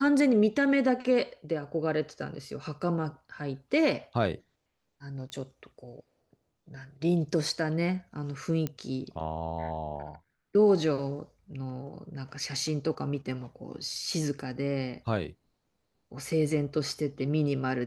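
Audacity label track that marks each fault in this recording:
5.300000	5.300000	pop -27 dBFS
8.670000	8.670000	pop -18 dBFS

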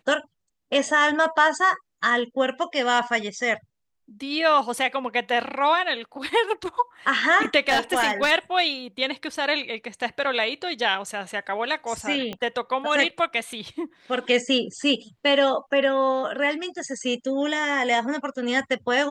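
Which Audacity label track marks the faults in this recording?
7.680000	8.320000	clipped -15.5 dBFS
12.330000	12.330000	pop -18 dBFS

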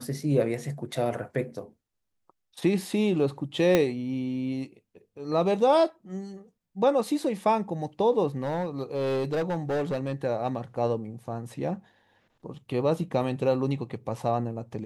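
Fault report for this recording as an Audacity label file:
3.750000	3.750000	pop -8 dBFS
8.380000	10.140000	clipped -24 dBFS

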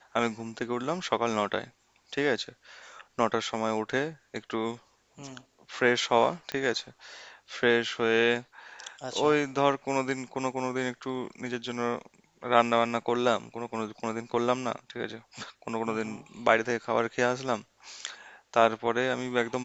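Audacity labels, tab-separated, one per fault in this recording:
6.520000	6.520000	pop -18 dBFS

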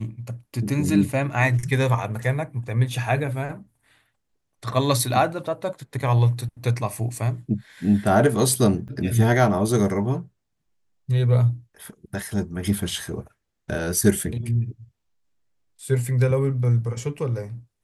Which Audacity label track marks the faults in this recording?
8.880000	8.890000	gap 7.4 ms

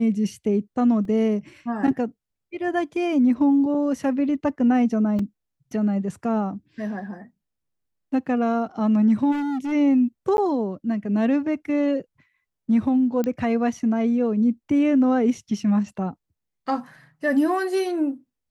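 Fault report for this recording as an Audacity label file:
1.050000	1.050000	gap 2.5 ms
5.190000	5.190000	gap 3.5 ms
9.310000	9.730000	clipped -24 dBFS
10.370000	10.380000	gap 11 ms
13.240000	13.240000	pop -14 dBFS

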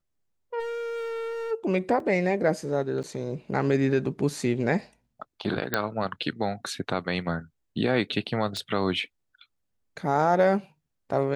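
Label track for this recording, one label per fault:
0.590000	1.520000	clipped -31 dBFS
2.000000	2.000000	gap 2.5 ms
3.030000	3.040000	gap 7.3 ms
5.740000	5.740000	pop -9 dBFS
8.570000	8.570000	pop -19 dBFS

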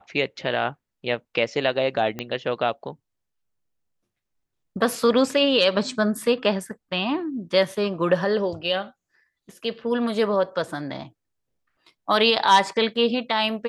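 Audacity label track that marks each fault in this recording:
2.190000	2.190000	pop -15 dBFS

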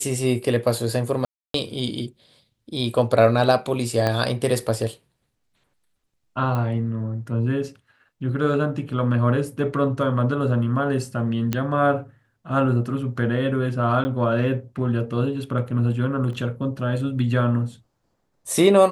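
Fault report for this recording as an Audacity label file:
1.250000	1.540000	gap 0.293 s
4.070000	4.070000	pop -9 dBFS
6.550000	6.550000	pop -16 dBFS
11.530000	11.530000	pop -9 dBFS
14.040000	14.050000	gap 10 ms
16.330000	16.330000	gap 2 ms

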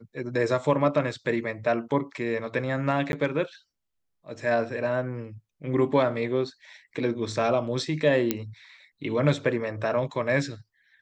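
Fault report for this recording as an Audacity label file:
3.120000	3.130000	gap 11 ms
8.310000	8.310000	pop -9 dBFS

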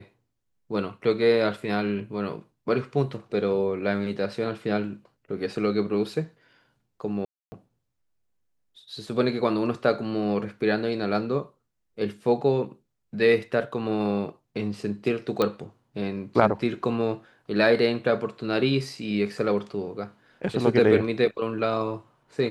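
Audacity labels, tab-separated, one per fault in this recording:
7.250000	7.520000	gap 0.27 s
15.420000	15.420000	pop -11 dBFS

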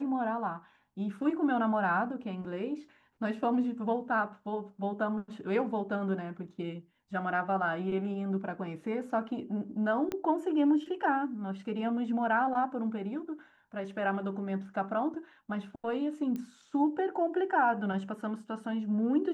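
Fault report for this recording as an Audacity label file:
10.120000	10.120000	pop -20 dBFS
16.360000	16.360000	pop -26 dBFS

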